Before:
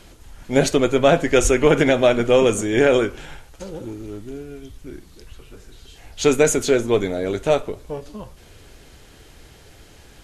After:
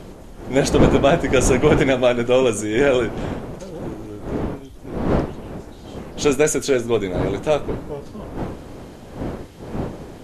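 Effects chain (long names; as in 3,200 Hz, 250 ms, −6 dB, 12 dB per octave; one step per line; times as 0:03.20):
wind on the microphone 410 Hz −25 dBFS
level −1 dB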